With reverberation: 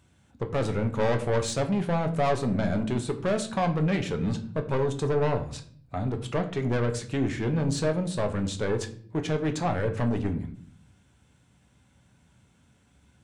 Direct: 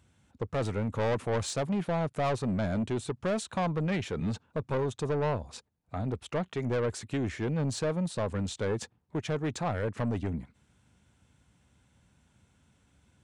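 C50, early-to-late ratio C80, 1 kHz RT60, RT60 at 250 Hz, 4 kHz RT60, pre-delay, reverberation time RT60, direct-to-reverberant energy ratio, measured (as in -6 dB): 13.0 dB, 16.0 dB, 0.45 s, 0.90 s, 0.40 s, 5 ms, 0.55 s, 5.0 dB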